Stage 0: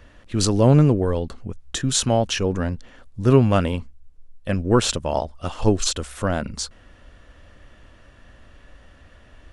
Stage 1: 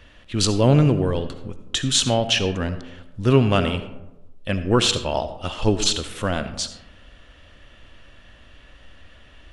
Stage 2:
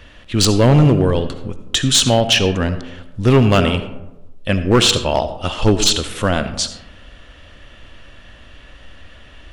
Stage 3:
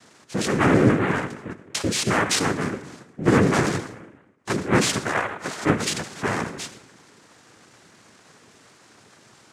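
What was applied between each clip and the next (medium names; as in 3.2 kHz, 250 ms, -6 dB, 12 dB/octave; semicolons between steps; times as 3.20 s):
peaking EQ 3.1 kHz +9 dB 1.1 oct; algorithmic reverb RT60 1 s, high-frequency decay 0.4×, pre-delay 30 ms, DRR 10.5 dB; trim -1.5 dB
hard clipper -12.5 dBFS, distortion -14 dB; trim +6.5 dB
low-pass 3.3 kHz 12 dB/octave; noise-vocoded speech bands 3; trim -6 dB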